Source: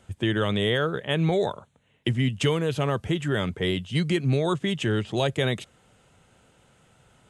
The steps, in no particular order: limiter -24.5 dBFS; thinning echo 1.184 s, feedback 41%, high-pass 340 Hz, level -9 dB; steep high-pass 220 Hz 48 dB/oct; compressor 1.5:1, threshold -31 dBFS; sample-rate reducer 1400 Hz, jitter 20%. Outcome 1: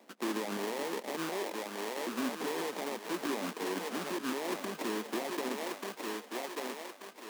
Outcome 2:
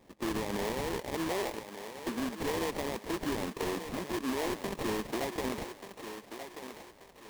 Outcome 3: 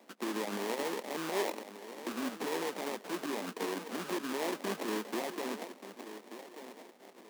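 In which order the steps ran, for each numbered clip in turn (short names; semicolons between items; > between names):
sample-rate reducer > thinning echo > compressor > steep high-pass > limiter; steep high-pass > limiter > sample-rate reducer > thinning echo > compressor; compressor > limiter > thinning echo > sample-rate reducer > steep high-pass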